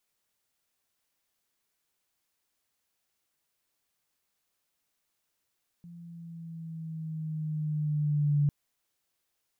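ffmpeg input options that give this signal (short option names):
-f lavfi -i "aevalsrc='pow(10,(-21+23.5*(t/2.65-1))/20)*sin(2*PI*172*2.65/(-3*log(2)/12)*(exp(-3*log(2)/12*t/2.65)-1))':d=2.65:s=44100"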